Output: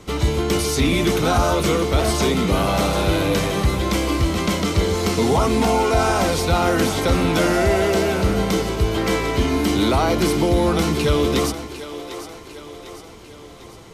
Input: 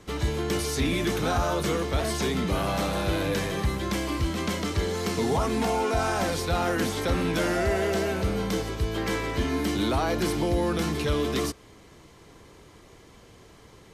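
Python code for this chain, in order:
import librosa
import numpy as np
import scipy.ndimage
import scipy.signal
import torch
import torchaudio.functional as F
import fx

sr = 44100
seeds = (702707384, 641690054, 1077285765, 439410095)

y = fx.notch(x, sr, hz=1700.0, q=7.9)
y = fx.echo_split(y, sr, split_hz=320.0, low_ms=138, high_ms=750, feedback_pct=52, wet_db=-12.0)
y = F.gain(torch.from_numpy(y), 7.5).numpy()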